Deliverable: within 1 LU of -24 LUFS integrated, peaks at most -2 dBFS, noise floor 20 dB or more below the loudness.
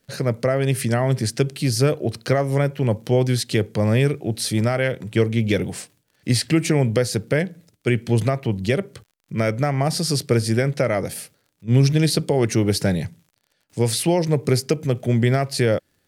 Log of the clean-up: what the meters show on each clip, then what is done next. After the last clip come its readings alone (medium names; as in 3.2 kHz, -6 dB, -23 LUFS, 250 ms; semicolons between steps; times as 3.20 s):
tick rate 40 per s; loudness -21.0 LUFS; peak level -6.0 dBFS; loudness target -24.0 LUFS
-> de-click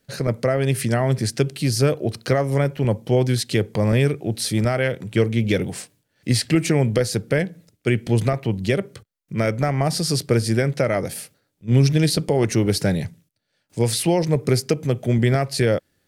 tick rate 0.56 per s; loudness -21.0 LUFS; peak level -6.0 dBFS; loudness target -24.0 LUFS
-> trim -3 dB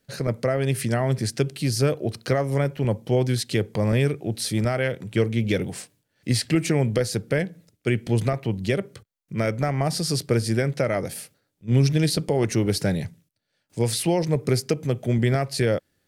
loudness -24.0 LUFS; peak level -9.0 dBFS; noise floor -75 dBFS